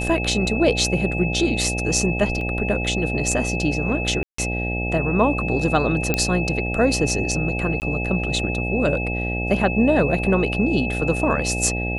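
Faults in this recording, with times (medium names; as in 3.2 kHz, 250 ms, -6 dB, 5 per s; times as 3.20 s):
buzz 60 Hz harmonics 14 -26 dBFS
whine 2.6 kHz -27 dBFS
2.41 s: dropout 2.3 ms
4.23–4.38 s: dropout 154 ms
6.14 s: pop -5 dBFS
7.80–7.82 s: dropout 19 ms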